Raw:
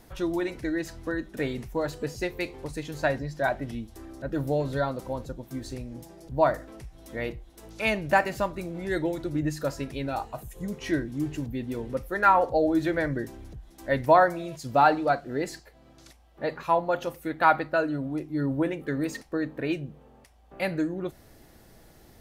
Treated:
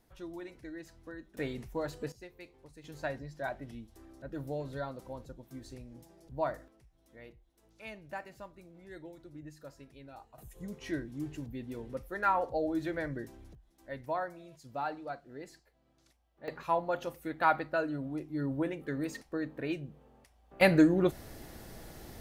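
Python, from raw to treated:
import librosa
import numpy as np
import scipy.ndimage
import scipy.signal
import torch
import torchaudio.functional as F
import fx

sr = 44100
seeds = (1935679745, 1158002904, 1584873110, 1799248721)

y = fx.gain(x, sr, db=fx.steps((0.0, -15.5), (1.37, -7.0), (2.12, -19.5), (2.84, -11.0), (6.68, -20.0), (10.38, -9.0), (13.55, -16.5), (16.48, -6.5), (20.61, 5.5)))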